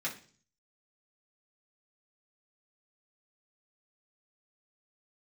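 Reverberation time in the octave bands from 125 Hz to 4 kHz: 0.75, 0.60, 0.45, 0.40, 0.40, 0.50 seconds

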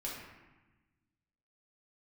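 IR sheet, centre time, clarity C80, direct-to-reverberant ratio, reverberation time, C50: 69 ms, 3.5 dB, −5.5 dB, 1.1 s, 1.0 dB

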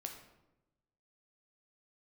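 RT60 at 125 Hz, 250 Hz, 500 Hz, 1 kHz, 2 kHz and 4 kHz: 1.3, 1.2, 1.1, 0.85, 0.70, 0.60 seconds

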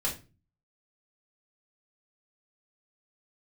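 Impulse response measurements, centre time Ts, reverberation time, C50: 21 ms, 0.30 s, 10.0 dB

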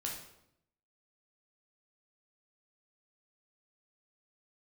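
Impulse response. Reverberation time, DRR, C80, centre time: 0.75 s, −2.0 dB, 8.0 dB, 37 ms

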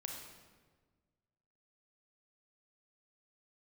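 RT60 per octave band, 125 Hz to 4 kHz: 2.0, 1.8, 1.6, 1.3, 1.2, 1.0 seconds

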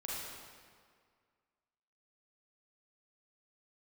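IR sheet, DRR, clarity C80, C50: −6.5 dB, −0.5 dB, −3.0 dB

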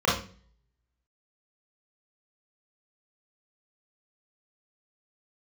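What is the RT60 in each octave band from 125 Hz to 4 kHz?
0.65, 0.60, 0.45, 0.35, 0.40, 0.40 seconds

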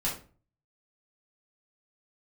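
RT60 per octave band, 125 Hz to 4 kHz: 0.65, 0.50, 0.40, 0.35, 0.30, 0.25 seconds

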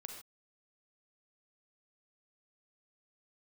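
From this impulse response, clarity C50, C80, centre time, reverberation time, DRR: 4.0 dB, 7.0 dB, 30 ms, non-exponential decay, 3.0 dB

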